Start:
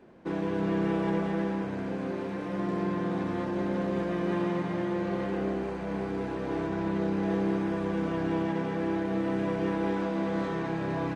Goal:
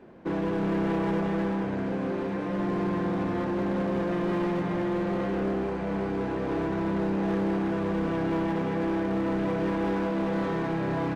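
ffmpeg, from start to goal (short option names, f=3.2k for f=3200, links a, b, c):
-filter_complex "[0:a]highshelf=f=4.5k:g=-8,asplit=2[a][b];[b]aeval=exprs='0.0335*(abs(mod(val(0)/0.0335+3,4)-2)-1)':c=same,volume=-4dB[c];[a][c]amix=inputs=2:normalize=0"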